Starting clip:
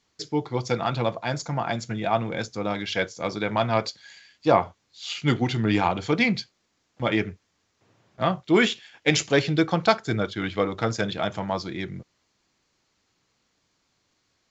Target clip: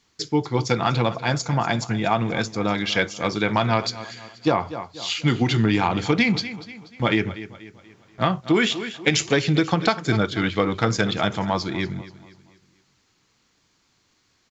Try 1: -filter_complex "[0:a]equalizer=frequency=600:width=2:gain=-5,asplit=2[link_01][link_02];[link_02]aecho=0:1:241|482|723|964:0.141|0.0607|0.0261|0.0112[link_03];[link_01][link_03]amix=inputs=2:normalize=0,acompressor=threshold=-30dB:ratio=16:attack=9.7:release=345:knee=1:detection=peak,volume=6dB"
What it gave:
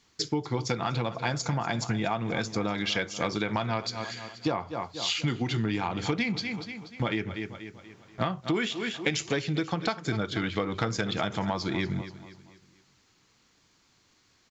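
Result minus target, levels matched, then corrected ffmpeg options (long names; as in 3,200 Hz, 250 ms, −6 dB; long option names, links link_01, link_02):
downward compressor: peak gain reduction +9.5 dB
-filter_complex "[0:a]equalizer=frequency=600:width=2:gain=-5,asplit=2[link_01][link_02];[link_02]aecho=0:1:241|482|723|964:0.141|0.0607|0.0261|0.0112[link_03];[link_01][link_03]amix=inputs=2:normalize=0,acompressor=threshold=-20dB:ratio=16:attack=9.7:release=345:knee=1:detection=peak,volume=6dB"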